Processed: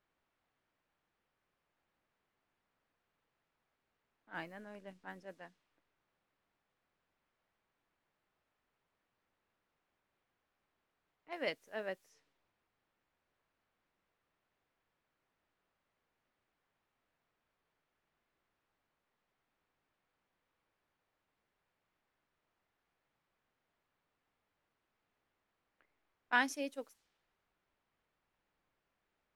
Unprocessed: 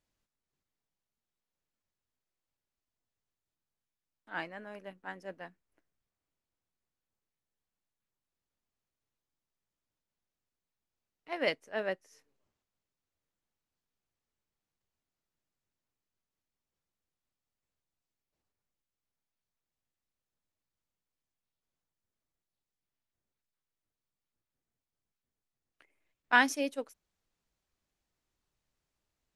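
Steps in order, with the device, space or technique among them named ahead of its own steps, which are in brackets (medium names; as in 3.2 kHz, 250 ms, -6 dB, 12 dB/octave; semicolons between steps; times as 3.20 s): 4.33–5.24 s: bass shelf 220 Hz +8.5 dB; cassette deck with a dynamic noise filter (white noise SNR 24 dB; level-controlled noise filter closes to 1.7 kHz, open at -37 dBFS); trim -7 dB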